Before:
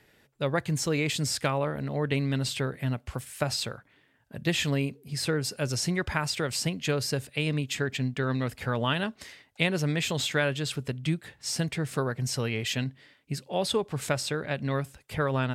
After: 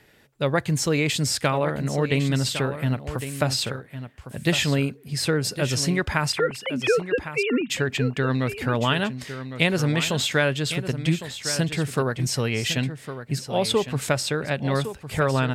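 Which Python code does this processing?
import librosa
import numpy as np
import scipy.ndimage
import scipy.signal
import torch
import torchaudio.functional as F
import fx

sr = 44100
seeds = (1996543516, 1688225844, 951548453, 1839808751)

y = fx.sine_speech(x, sr, at=(6.32, 7.7))
y = y + 10.0 ** (-11.0 / 20.0) * np.pad(y, (int(1107 * sr / 1000.0), 0))[:len(y)]
y = F.gain(torch.from_numpy(y), 5.0).numpy()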